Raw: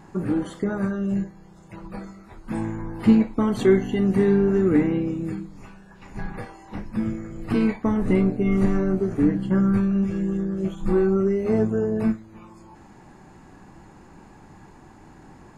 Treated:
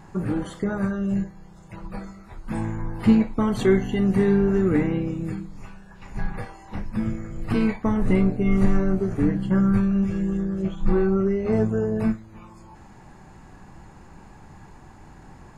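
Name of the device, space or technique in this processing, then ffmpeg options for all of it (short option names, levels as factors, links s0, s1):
low shelf boost with a cut just above: -filter_complex "[0:a]asettb=1/sr,asplit=3[s0][s1][s2];[s0]atrim=end=10.624[s3];[s1]atrim=start=10.62:end=11.53,asetpts=PTS-STARTPTS,afade=t=in:d=0.004:c=qsin,afade=t=out:st=0.906:d=0.004:c=qsin,lowpass=5200[s4];[s2]atrim=start=11.526[s5];[s3][s4]acrossfade=d=0.004:c1=hsin:c2=qsin[s6];[s6][s5]acrossfade=d=0.004:c1=qsin:c2=hsin,lowshelf=f=98:g=6,equalizer=f=300:t=o:w=0.99:g=-5,volume=1.12"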